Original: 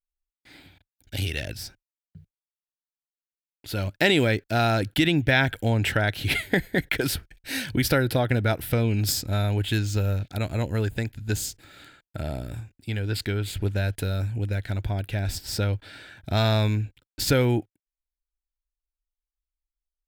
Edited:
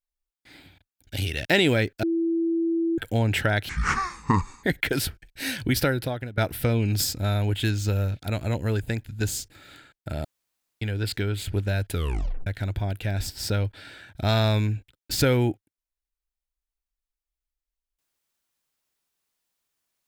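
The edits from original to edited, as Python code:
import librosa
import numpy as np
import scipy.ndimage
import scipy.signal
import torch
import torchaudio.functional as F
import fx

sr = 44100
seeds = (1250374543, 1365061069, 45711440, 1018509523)

y = fx.edit(x, sr, fx.cut(start_s=1.45, length_s=2.51),
    fx.bleep(start_s=4.54, length_s=0.95, hz=332.0, db=-21.0),
    fx.speed_span(start_s=6.2, length_s=0.52, speed=0.55),
    fx.fade_out_to(start_s=7.84, length_s=0.62, floor_db=-20.5),
    fx.room_tone_fill(start_s=12.33, length_s=0.57),
    fx.tape_stop(start_s=14.01, length_s=0.54), tone=tone)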